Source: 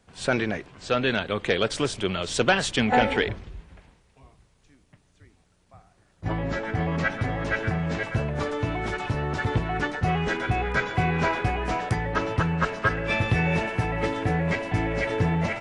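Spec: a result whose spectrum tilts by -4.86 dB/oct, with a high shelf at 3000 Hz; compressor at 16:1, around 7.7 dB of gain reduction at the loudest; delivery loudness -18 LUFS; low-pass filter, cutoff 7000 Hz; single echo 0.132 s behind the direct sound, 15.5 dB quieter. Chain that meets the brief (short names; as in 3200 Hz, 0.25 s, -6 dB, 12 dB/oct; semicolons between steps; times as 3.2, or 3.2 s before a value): LPF 7000 Hz; high shelf 3000 Hz -4.5 dB; compressor 16:1, threshold -25 dBFS; echo 0.132 s -15.5 dB; gain +12.5 dB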